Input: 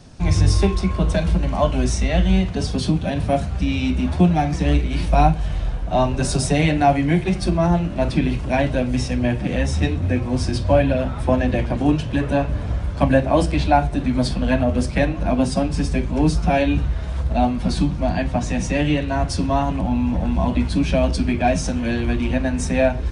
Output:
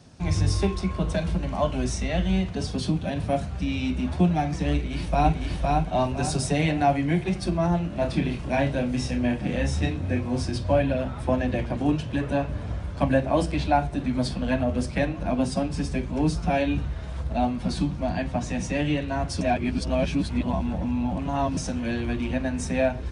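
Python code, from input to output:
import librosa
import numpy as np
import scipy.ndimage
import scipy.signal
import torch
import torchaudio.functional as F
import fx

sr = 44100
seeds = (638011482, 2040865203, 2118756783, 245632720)

y = fx.echo_throw(x, sr, start_s=4.73, length_s=0.66, ms=510, feedback_pct=35, wet_db=-2.0)
y = fx.doubler(y, sr, ms=29.0, db=-5.5, at=(7.9, 10.42))
y = fx.edit(y, sr, fx.reverse_span(start_s=19.41, length_s=2.16), tone=tone)
y = scipy.signal.sosfilt(scipy.signal.butter(2, 62.0, 'highpass', fs=sr, output='sos'), y)
y = y * 10.0 ** (-5.5 / 20.0)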